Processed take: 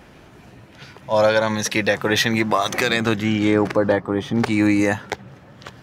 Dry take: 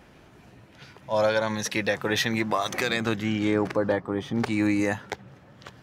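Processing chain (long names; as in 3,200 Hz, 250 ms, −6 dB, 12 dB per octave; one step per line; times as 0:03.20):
level +6.5 dB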